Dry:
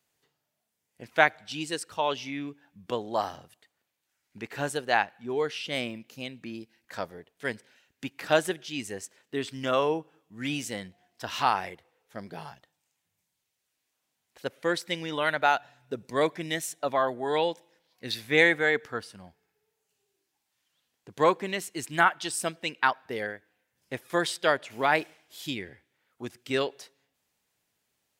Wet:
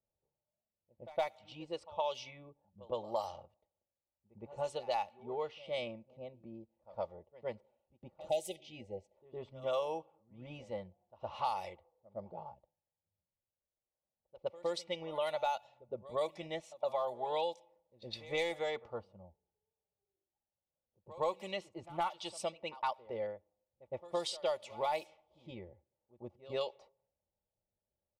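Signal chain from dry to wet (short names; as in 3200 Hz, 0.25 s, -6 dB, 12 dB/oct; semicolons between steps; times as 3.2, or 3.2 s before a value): in parallel at -7 dB: hard clip -15 dBFS, distortion -15 dB; on the sum: fixed phaser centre 670 Hz, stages 4; comb 3.5 ms, depth 56%; low-pass opened by the level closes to 420 Hz, open at -20.5 dBFS; compressor 3:1, threshold -29 dBFS, peak gain reduction 12 dB; spectral delete 8.29–9.14, 870–1900 Hz; on a send: reverse echo 0.113 s -18.5 dB; on the sum: gain -4.5 dB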